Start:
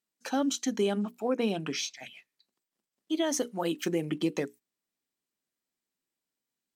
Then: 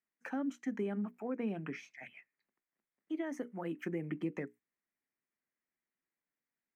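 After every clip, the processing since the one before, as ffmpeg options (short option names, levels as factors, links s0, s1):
-filter_complex "[0:a]acrossover=split=310[s0][s1];[s1]acompressor=threshold=0.00708:ratio=2[s2];[s0][s2]amix=inputs=2:normalize=0,highshelf=f=2800:t=q:w=3:g=-11.5,volume=0.562"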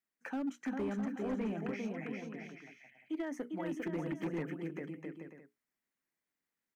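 -filter_complex "[0:a]asplit=2[s0][s1];[s1]aecho=0:1:400|660|829|938.8|1010:0.631|0.398|0.251|0.158|0.1[s2];[s0][s2]amix=inputs=2:normalize=0,volume=35.5,asoftclip=hard,volume=0.0282"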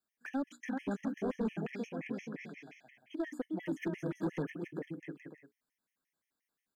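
-af "afftfilt=real='re*gt(sin(2*PI*5.7*pts/sr)*(1-2*mod(floor(b*sr/1024/1700),2)),0)':imag='im*gt(sin(2*PI*5.7*pts/sr)*(1-2*mod(floor(b*sr/1024/1700),2)),0)':win_size=1024:overlap=0.75,volume=1.5"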